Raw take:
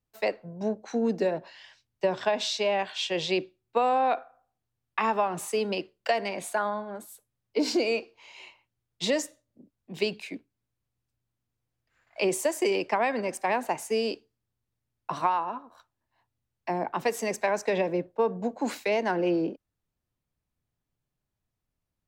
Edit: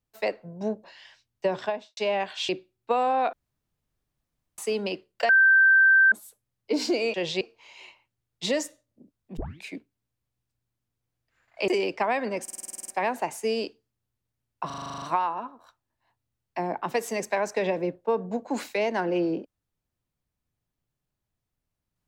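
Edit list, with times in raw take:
0.84–1.43 cut
2.16–2.56 studio fade out
3.08–3.35 move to 8
4.19–5.44 room tone
6.15–6.98 bleep 1560 Hz -14 dBFS
9.96 tape start 0.26 s
12.27–12.6 cut
13.35 stutter 0.05 s, 10 plays
15.13 stutter 0.04 s, 10 plays

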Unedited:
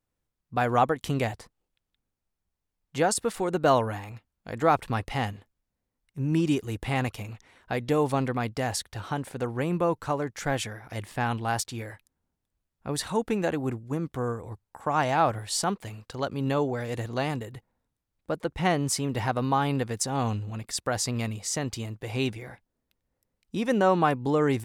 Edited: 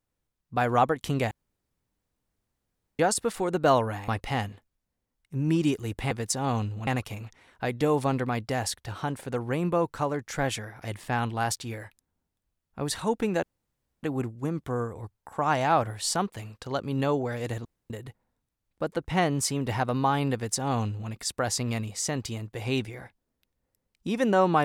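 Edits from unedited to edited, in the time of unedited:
1.31–2.99 room tone
4.08–4.92 cut
13.51 insert room tone 0.60 s
17.13–17.38 room tone
19.82–20.58 copy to 6.95

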